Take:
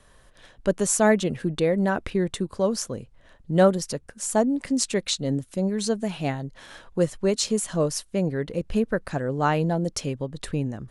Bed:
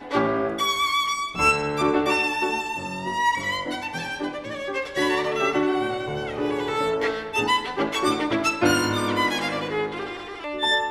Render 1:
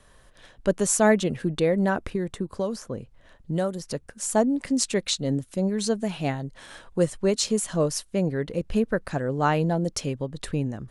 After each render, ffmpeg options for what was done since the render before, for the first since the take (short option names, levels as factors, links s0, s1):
-filter_complex "[0:a]asettb=1/sr,asplit=3[s0][s1][s2];[s0]atrim=end=1.954[s3];[s1]atrim=start=1.95:end=3.91,asetpts=PTS-STARTPTS,afade=t=in:d=0.004:c=qsin,afade=t=out:st=1.956:d=0.004:c=qsin,acrossover=split=1900|5300[s4][s5][s6];[s4]acompressor=threshold=0.0631:ratio=4[s7];[s5]acompressor=threshold=0.00316:ratio=4[s8];[s6]acompressor=threshold=0.00447:ratio=4[s9];[s7][s8][s9]amix=inputs=3:normalize=0[s10];[s2]atrim=start=3.906[s11];[s3][s10]acrossfade=d=0.004:c1=hsin:c2=qsin[s12];[s12][s11]acrossfade=d=0.004:c1=qsin:c2=hsin,asettb=1/sr,asplit=3[s13][s14][s15];[s13]atrim=end=6.464[s16];[s14]atrim=start=6.46:end=7.19,asetpts=PTS-STARTPTS,afade=t=in:d=0.004:c=qsin,afade=t=out:st=0.726:d=0.004:c=qsin,equalizer=f=8600:w=5.3:g=7[s17];[s15]atrim=start=7.186[s18];[s16][s17]acrossfade=d=0.004:c1=hsin:c2=qsin[s19];[s19][s18]acrossfade=d=0.004:c1=qsin:c2=hsin"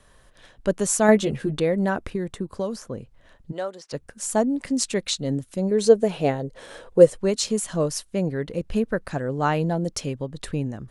-filter_complex "[0:a]asettb=1/sr,asplit=3[s0][s1][s2];[s0]atrim=end=1.074[s3];[s1]atrim=start=1.07:end=1.6,asetpts=PTS-STARTPTS,afade=t=in:d=0.004:c=qsin,afade=t=out:st=0.526:d=0.004:c=qsin,asplit=2[s4][s5];[s5]adelay=14,volume=0.631[s6];[s4][s6]amix=inputs=2:normalize=0,atrim=end_sample=23373[s7];[s2]atrim=start=1.596[s8];[s3][s7]acrossfade=d=0.004:c1=hsin:c2=qsin[s9];[s9][s8]acrossfade=d=0.004:c1=qsin:c2=hsin,asplit=3[s10][s11][s12];[s10]afade=t=out:st=3.51:d=0.02[s13];[s11]highpass=490,lowpass=5400,afade=t=in:st=3.51:d=0.02,afade=t=out:st=3.92:d=0.02[s14];[s12]afade=t=in:st=3.92:d=0.02[s15];[s13][s14][s15]amix=inputs=3:normalize=0,asettb=1/sr,asplit=3[s16][s17][s18];[s16]atrim=end=5.714[s19];[s17]atrim=start=5.71:end=7.19,asetpts=PTS-STARTPTS,afade=t=in:d=0.004:c=qsin,afade=t=out:st=1.476:d=0.004:c=qsin,equalizer=f=480:w=1.9:g=14[s20];[s18]atrim=start=7.186[s21];[s19][s20]acrossfade=d=0.004:c1=hsin:c2=qsin[s22];[s22][s21]acrossfade=d=0.004:c1=qsin:c2=hsin"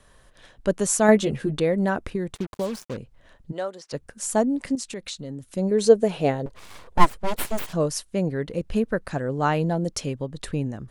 -filter_complex "[0:a]asettb=1/sr,asplit=3[s0][s1][s2];[s0]atrim=end=2.354[s3];[s1]atrim=start=2.35:end=2.97,asetpts=PTS-STARTPTS,afade=t=in:d=0.004:c=qsin,afade=t=out:st=0.616:d=0.004:c=qsin,acrusher=bits=5:mix=0:aa=0.5[s4];[s2]atrim=start=2.966[s5];[s3][s4]acrossfade=d=0.004:c1=hsin:c2=qsin[s6];[s6][s5]acrossfade=d=0.004:c1=qsin:c2=hsin,asettb=1/sr,asplit=3[s7][s8][s9];[s7]atrim=end=4.754[s10];[s8]atrim=start=4.75:end=5.54,asetpts=PTS-STARTPTS,afade=t=in:d=0.004:c=qsin,afade=t=out:st=0.786:d=0.004:c=qsin,acompressor=threshold=0.0224:ratio=3:attack=3.2:release=140:knee=1:detection=peak[s11];[s9]atrim=start=5.536[s12];[s10][s11]acrossfade=d=0.004:c1=hsin:c2=qsin[s13];[s13][s12]acrossfade=d=0.004:c1=qsin:c2=hsin,asettb=1/sr,asplit=3[s14][s15][s16];[s14]atrim=end=6.464[s17];[s15]atrim=start=6.46:end=7.73,asetpts=PTS-STARTPTS,afade=t=in:d=0.004:c=qsin,afade=t=out:st=1.266:d=0.004:c=qsin,aeval=exprs='abs(val(0))':c=same[s18];[s16]atrim=start=7.726[s19];[s17][s18]acrossfade=d=0.004:c1=hsin:c2=qsin[s20];[s20][s19]acrossfade=d=0.004:c1=qsin:c2=hsin"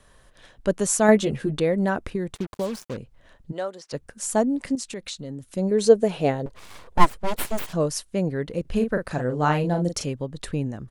-filter_complex "[0:a]asplit=3[s0][s1][s2];[s0]afade=t=out:st=8.65:d=0.02[s3];[s1]asplit=2[s4][s5];[s5]adelay=40,volume=0.501[s6];[s4][s6]amix=inputs=2:normalize=0,afade=t=in:st=8.65:d=0.02,afade=t=out:st=10.03:d=0.02[s7];[s2]afade=t=in:st=10.03:d=0.02[s8];[s3][s7][s8]amix=inputs=3:normalize=0"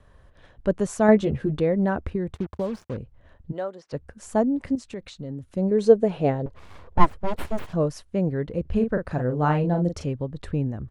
-af "lowpass=f=1400:p=1,equalizer=f=76:w=1.5:g=10.5"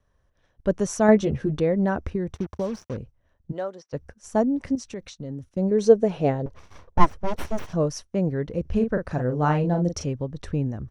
-af "agate=range=0.2:threshold=0.00794:ratio=16:detection=peak,equalizer=f=5800:w=5.9:g=13.5"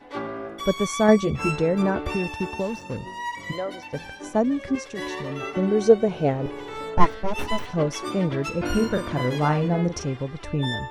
-filter_complex "[1:a]volume=0.335[s0];[0:a][s0]amix=inputs=2:normalize=0"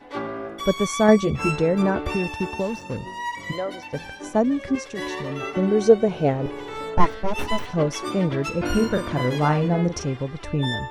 -af "volume=1.19,alimiter=limit=0.708:level=0:latency=1"